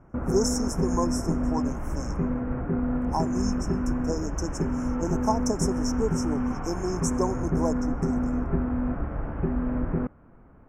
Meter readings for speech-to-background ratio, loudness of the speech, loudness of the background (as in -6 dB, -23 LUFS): -3.5 dB, -32.0 LUFS, -28.5 LUFS